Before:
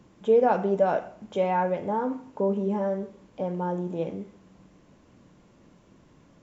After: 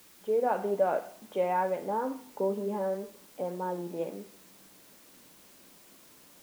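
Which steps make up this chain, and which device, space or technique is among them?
dictaphone (band-pass 260–3100 Hz; level rider gain up to 6 dB; wow and flutter; white noise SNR 24 dB); trim -9 dB

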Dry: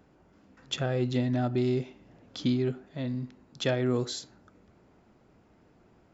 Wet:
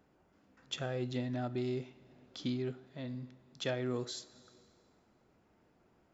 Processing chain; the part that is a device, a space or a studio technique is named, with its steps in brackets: compressed reverb return (on a send at -11 dB: reverberation RT60 1.7 s, pre-delay 12 ms + compression, threshold -37 dBFS, peak gain reduction 13 dB); on the sum: bass shelf 320 Hz -4 dB; trim -6.5 dB

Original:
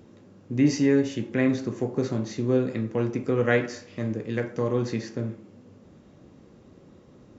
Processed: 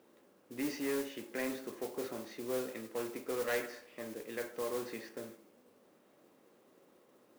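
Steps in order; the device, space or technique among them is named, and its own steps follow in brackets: carbon microphone (band-pass 440–3500 Hz; saturation -22 dBFS, distortion -14 dB; modulation noise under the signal 12 dB); trim -6.5 dB

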